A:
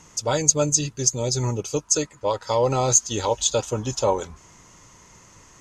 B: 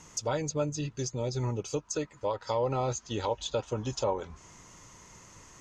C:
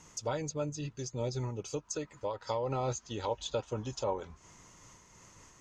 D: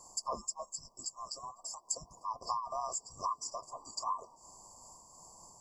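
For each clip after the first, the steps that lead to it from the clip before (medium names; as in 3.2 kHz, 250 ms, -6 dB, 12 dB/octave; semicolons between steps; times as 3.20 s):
low-pass that closes with the level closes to 2.9 kHz, closed at -19.5 dBFS; compression 1.5:1, threshold -33 dBFS, peak gain reduction 6.5 dB; trim -2.5 dB
random flutter of the level, depth 60%
every band turned upside down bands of 2 kHz; brick-wall FIR band-stop 1.2–4.5 kHz; trim +4 dB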